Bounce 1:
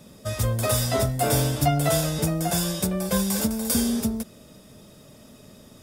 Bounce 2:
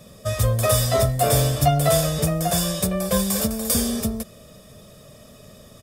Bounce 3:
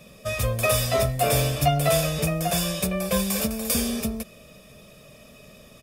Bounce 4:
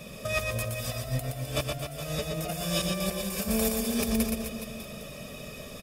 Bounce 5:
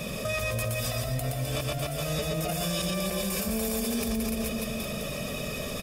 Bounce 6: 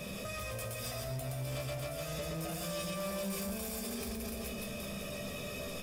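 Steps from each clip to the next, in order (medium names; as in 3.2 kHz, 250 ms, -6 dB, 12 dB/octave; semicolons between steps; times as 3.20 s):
comb 1.7 ms, depth 51%; trim +2 dB
graphic EQ with 31 bands 100 Hz -10 dB, 2.5 kHz +11 dB, 8 kHz -3 dB; trim -2.5 dB
compressor with a negative ratio -30 dBFS, ratio -0.5; on a send: reverse bouncing-ball echo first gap 120 ms, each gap 1.15×, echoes 5; on the sum: trim -1.5 dB
peak limiter -23.5 dBFS, peak gain reduction 9 dB; level flattener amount 50%; trim +2 dB
chord resonator C2 major, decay 0.27 s; saturation -36 dBFS, distortion -15 dB; trim +3.5 dB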